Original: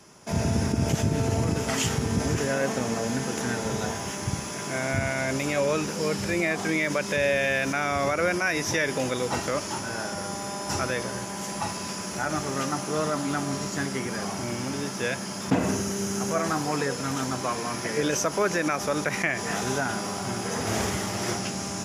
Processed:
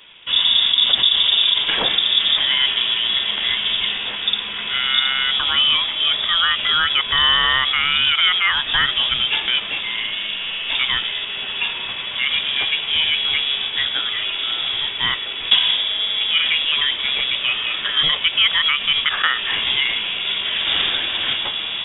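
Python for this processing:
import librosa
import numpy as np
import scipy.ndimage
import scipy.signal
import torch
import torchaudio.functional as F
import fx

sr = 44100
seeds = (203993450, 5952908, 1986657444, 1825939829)

y = fx.freq_invert(x, sr, carrier_hz=3600)
y = y * librosa.db_to_amplitude(8.0)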